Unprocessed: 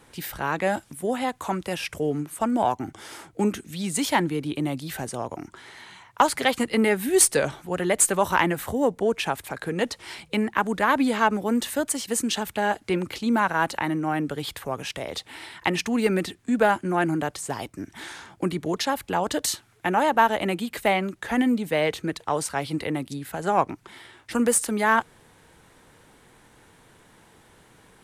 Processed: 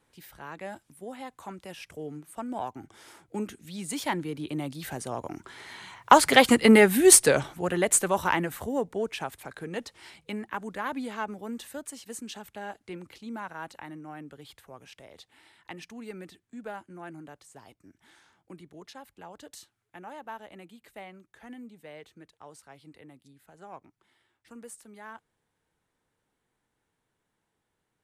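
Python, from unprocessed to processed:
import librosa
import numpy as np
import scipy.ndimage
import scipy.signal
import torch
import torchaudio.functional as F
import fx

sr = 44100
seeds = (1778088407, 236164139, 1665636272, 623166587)

y = fx.doppler_pass(x, sr, speed_mps=5, closest_m=2.9, pass_at_s=6.56)
y = y * 10.0 ** (5.5 / 20.0)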